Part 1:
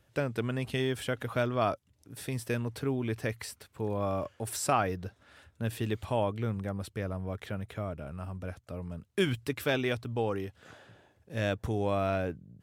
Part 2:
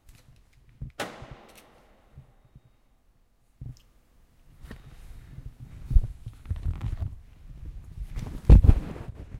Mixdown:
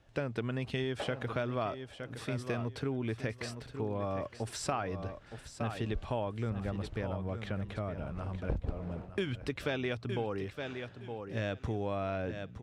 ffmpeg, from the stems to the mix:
-filter_complex "[0:a]volume=0.5dB,asplit=2[a][b];[b]volume=-11.5dB[c];[1:a]equalizer=f=580:t=o:w=1.8:g=13.5,volume=-14dB,asplit=2[d][e];[e]volume=-24dB[f];[c][f]amix=inputs=2:normalize=0,aecho=0:1:915|1830|2745:1|0.2|0.04[g];[a][d][g]amix=inputs=3:normalize=0,lowpass=5.6k,acompressor=threshold=-31dB:ratio=4"

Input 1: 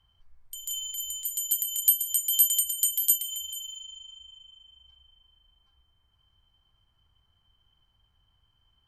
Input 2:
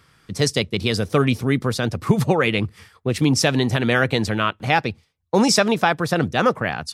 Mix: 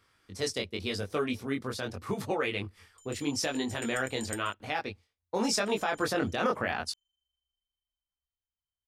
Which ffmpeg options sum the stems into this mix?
-filter_complex "[0:a]acompressor=threshold=-28dB:ratio=6,aeval=exprs='0.266*(cos(1*acos(clip(val(0)/0.266,-1,1)))-cos(1*PI/2))+0.0133*(cos(6*acos(clip(val(0)/0.266,-1,1)))-cos(6*PI/2))+0.0335*(cos(7*acos(clip(val(0)/0.266,-1,1)))-cos(7*PI/2))':c=same,lowpass=f=7.7k:t=q:w=5.4,adelay=2450,volume=-12dB,asplit=3[a][b][c];[a]atrim=end=4.54,asetpts=PTS-STARTPTS,afade=t=out:st=4.536:d=0.004:c=hsin[d];[b]atrim=start=4.54:end=5.44,asetpts=PTS-STARTPTS,volume=0[e];[c]atrim=start=5.44,asetpts=PTS-STARTPTS,afade=t=in:d=0.004:c=hsin[f];[d][e][f]concat=n=3:v=0:a=1[g];[1:a]equalizer=f=150:w=2.6:g=-14,flanger=delay=19.5:depth=3.4:speed=0.85,volume=-0.5dB,afade=t=in:st=5.55:d=0.6:silence=0.421697[h];[g][h]amix=inputs=2:normalize=0,alimiter=limit=-18dB:level=0:latency=1:release=51"

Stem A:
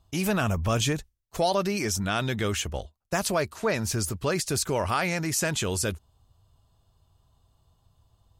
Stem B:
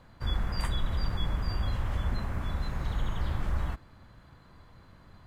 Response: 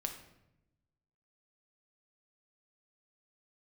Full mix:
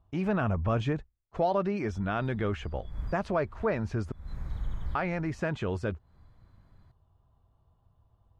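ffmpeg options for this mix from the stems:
-filter_complex "[0:a]lowpass=1.6k,volume=-2dB,asplit=3[a][b][c];[a]atrim=end=4.12,asetpts=PTS-STARTPTS,afade=t=out:st=4.116:d=0.004:c=hsin[d];[b]atrim=start=4.12:end=4.95,asetpts=PTS-STARTPTS,volume=0[e];[c]atrim=start=4.95,asetpts=PTS-STARTPTS,afade=t=in:d=0.004:c=hsin[f];[d][e][f]concat=n=3:v=0:a=1,asplit=2[g][h];[1:a]lowshelf=f=190:g=10.5,bandreject=f=2.8k:w=7.4,adelay=1650,volume=-12.5dB[i];[h]apad=whole_len=304932[j];[i][j]sidechaincompress=threshold=-48dB:ratio=6:attack=11:release=174[k];[g][k]amix=inputs=2:normalize=0"

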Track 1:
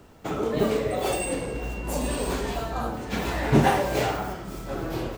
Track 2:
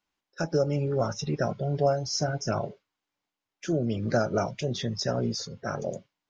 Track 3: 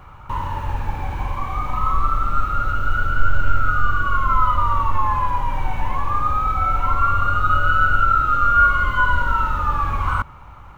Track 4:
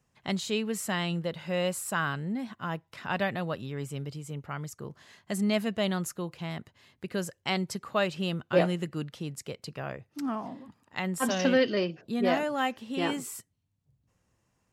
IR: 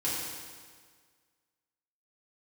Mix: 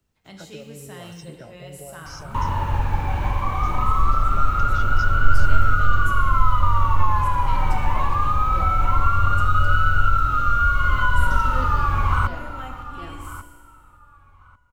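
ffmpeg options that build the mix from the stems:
-filter_complex "[0:a]equalizer=f=590:w=0.36:g=-13,volume=-17.5dB[a];[1:a]acompressor=threshold=-29dB:ratio=6,volume=-9.5dB[b];[2:a]adelay=2050,volume=1.5dB,asplit=2[c][d];[d]volume=-17.5dB[e];[3:a]highshelf=f=11k:g=12,volume=-16dB,asplit=3[f][g][h];[g]volume=-6.5dB[i];[h]apad=whole_len=228147[j];[a][j]sidechaincompress=threshold=-47dB:ratio=8:attack=16:release=700[k];[4:a]atrim=start_sample=2205[l];[i][l]afir=irnorm=-1:irlink=0[m];[e]aecho=0:1:1143|2286|3429:1|0.18|0.0324[n];[k][b][c][f][m][n]amix=inputs=6:normalize=0,equalizer=f=89:w=1.5:g=2.5,acrossover=split=160|3000[o][p][q];[p]acompressor=threshold=-20dB:ratio=6[r];[o][r][q]amix=inputs=3:normalize=0"

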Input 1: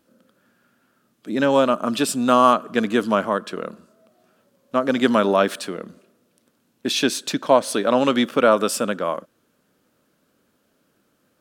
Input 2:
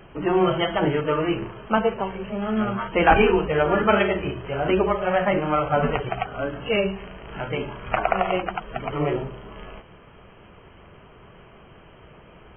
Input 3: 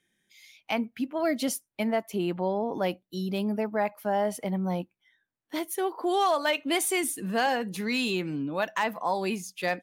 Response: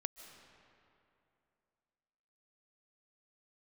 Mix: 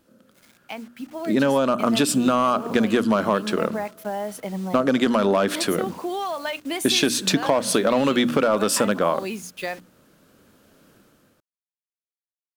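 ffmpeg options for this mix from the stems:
-filter_complex "[0:a]lowshelf=f=120:g=9,volume=1.5dB[a];[2:a]acompressor=threshold=-27dB:ratio=5,acrusher=bits=7:mix=0:aa=0.000001,volume=-3.5dB[b];[a][b]amix=inputs=2:normalize=0,bandreject=f=60:t=h:w=6,bandreject=f=120:t=h:w=6,bandreject=f=180:t=h:w=6,bandreject=f=240:t=h:w=6,bandreject=f=300:t=h:w=6,alimiter=limit=-7dB:level=0:latency=1:release=10,volume=0dB,dynaudnorm=f=910:g=3:m=11.5dB,asoftclip=type=hard:threshold=-4dB,acompressor=threshold=-16dB:ratio=6"

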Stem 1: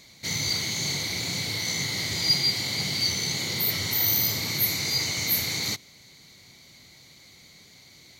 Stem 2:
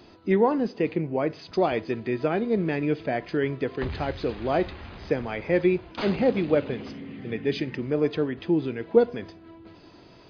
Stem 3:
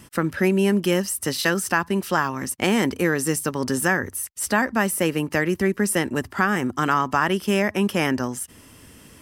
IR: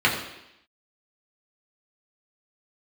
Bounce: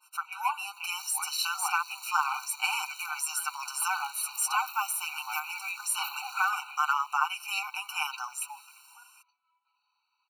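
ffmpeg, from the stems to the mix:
-filter_complex "[0:a]equalizer=f=2.7k:w=0.45:g=-9,acompressor=threshold=-36dB:ratio=16,acrusher=bits=6:dc=4:mix=0:aa=0.000001,adelay=750,volume=0.5dB[a];[1:a]aecho=1:1:7:0.59,volume=2dB[b];[2:a]aecho=1:1:6.6:0.55,dynaudnorm=f=120:g=17:m=11.5dB,adynamicequalizer=threshold=0.0355:dfrequency=1600:dqfactor=0.7:tfrequency=1600:tqfactor=0.7:attack=5:release=100:ratio=0.375:range=1.5:mode=cutabove:tftype=highshelf,volume=-4dB,asplit=2[c][d];[d]apad=whole_len=454183[e];[b][e]sidechaingate=range=-20dB:threshold=-47dB:ratio=16:detection=peak[f];[a][f][c]amix=inputs=3:normalize=0,highpass=f=1.1k:p=1,afftfilt=real='re*eq(mod(floor(b*sr/1024/760),2),1)':imag='im*eq(mod(floor(b*sr/1024/760),2),1)':win_size=1024:overlap=0.75"

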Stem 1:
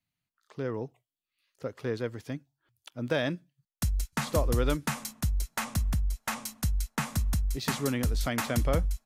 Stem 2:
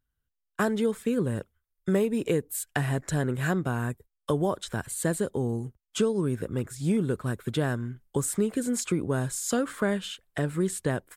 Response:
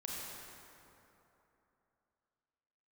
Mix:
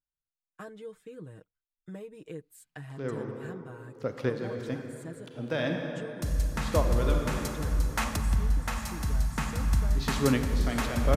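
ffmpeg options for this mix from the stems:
-filter_complex "[0:a]adelay=2400,volume=3dB,asplit=2[a][b];[b]volume=-6dB[c];[1:a]aecho=1:1:6.4:0.75,volume=-19dB,asplit=2[d][e];[e]apad=whole_len=505122[f];[a][f]sidechaincompress=threshold=-58dB:ratio=8:attack=42:release=203[g];[2:a]atrim=start_sample=2205[h];[c][h]afir=irnorm=-1:irlink=0[i];[g][d][i]amix=inputs=3:normalize=0,highshelf=f=8.6k:g=-8"

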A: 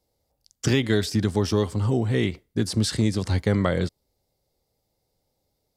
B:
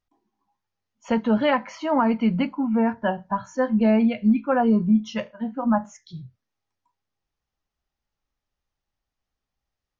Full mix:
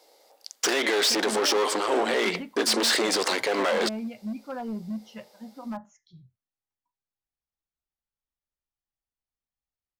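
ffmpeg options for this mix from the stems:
-filter_complex "[0:a]aeval=exprs='clip(val(0),-1,0.0531)':c=same,asplit=2[a][b];[b]highpass=f=720:p=1,volume=29dB,asoftclip=type=tanh:threshold=-9.5dB[c];[a][c]amix=inputs=2:normalize=0,lowpass=f=4.1k:p=1,volume=-6dB,highpass=f=340:w=0.5412,highpass=f=340:w=1.3066,volume=-0.5dB[d];[1:a]asoftclip=type=hard:threshold=-14dB,volume=-14dB[e];[d][e]amix=inputs=2:normalize=0,alimiter=limit=-15dB:level=0:latency=1:release=68"

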